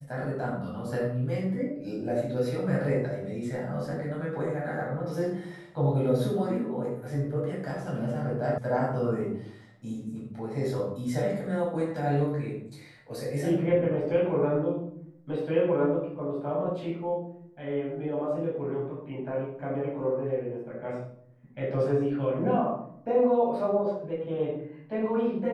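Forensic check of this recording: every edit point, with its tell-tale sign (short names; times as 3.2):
8.58 sound cut off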